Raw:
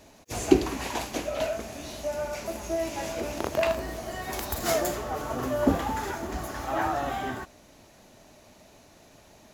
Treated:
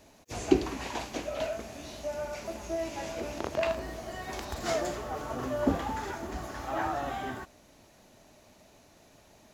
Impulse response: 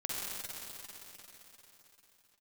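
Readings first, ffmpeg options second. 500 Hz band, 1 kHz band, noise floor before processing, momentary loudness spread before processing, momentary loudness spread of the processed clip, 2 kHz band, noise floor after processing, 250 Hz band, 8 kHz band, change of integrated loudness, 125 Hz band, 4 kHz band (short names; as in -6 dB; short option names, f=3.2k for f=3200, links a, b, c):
-4.0 dB, -4.0 dB, -55 dBFS, 10 LU, 10 LU, -4.0 dB, -59 dBFS, -4.0 dB, -7.0 dB, -4.0 dB, -4.0 dB, -4.5 dB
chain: -filter_complex "[0:a]acrossover=split=7600[a][b];[b]acompressor=threshold=-55dB:ratio=4:attack=1:release=60[c];[a][c]amix=inputs=2:normalize=0,volume=-4dB"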